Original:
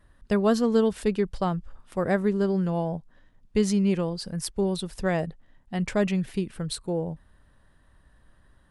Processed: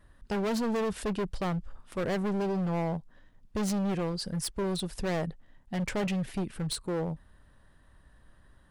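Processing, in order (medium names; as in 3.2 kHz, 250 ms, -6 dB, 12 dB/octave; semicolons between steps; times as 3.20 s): overload inside the chain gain 27.5 dB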